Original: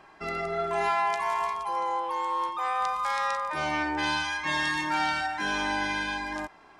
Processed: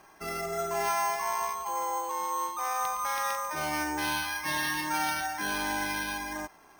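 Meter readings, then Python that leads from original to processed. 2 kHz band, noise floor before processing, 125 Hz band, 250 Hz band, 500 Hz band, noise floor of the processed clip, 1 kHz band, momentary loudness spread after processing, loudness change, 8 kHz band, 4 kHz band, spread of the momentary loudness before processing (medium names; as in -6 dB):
-3.5 dB, -54 dBFS, -2.5 dB, -2.5 dB, -2.5 dB, -56 dBFS, -3.0 dB, 4 LU, -2.5 dB, +9.0 dB, -2.5 dB, 4 LU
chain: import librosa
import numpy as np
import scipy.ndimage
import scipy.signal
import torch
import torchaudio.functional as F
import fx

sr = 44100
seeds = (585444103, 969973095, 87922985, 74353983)

y = np.repeat(x[::6], 6)[:len(x)]
y = y * 10.0 ** (-2.5 / 20.0)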